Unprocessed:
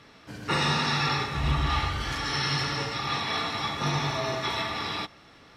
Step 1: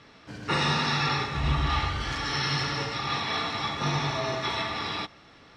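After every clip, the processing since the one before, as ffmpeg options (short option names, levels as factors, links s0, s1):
-af "lowpass=7400"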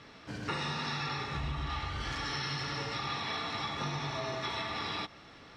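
-af "acompressor=threshold=0.0224:ratio=6"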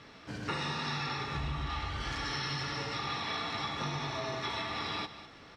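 -af "aecho=1:1:203:0.211"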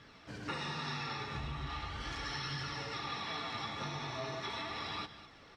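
-af "flanger=delay=0.6:depth=8.7:regen=64:speed=0.39:shape=sinusoidal"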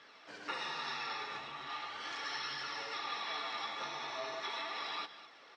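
-af "highpass=490,lowpass=6700,volume=1.12"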